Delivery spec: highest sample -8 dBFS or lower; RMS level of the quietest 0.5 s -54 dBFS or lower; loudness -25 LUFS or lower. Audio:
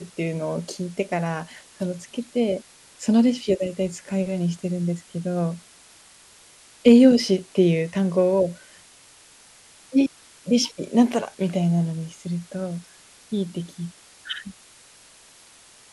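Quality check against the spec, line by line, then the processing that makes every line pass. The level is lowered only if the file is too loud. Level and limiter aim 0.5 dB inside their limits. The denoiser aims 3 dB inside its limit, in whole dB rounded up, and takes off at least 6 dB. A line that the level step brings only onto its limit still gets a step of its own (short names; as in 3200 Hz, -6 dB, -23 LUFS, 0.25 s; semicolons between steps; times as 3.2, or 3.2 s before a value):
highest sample -3.5 dBFS: fail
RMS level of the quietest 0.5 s -51 dBFS: fail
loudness -23.0 LUFS: fail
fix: denoiser 6 dB, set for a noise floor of -51 dBFS; gain -2.5 dB; limiter -8.5 dBFS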